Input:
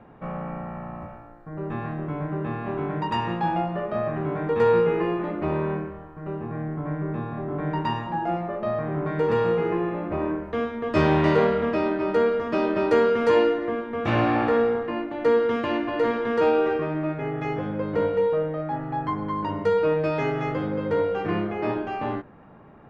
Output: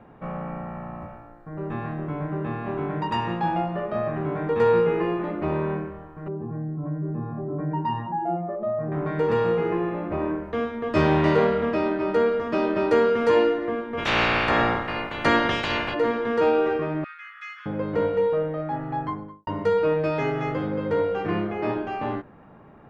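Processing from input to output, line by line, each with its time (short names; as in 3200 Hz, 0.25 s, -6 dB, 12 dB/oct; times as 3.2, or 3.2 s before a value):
6.28–8.92 spectral contrast raised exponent 1.6
13.97–15.93 spectral limiter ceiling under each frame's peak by 26 dB
17.04–17.66 steep high-pass 1200 Hz 72 dB/oct
18.95–19.47 studio fade out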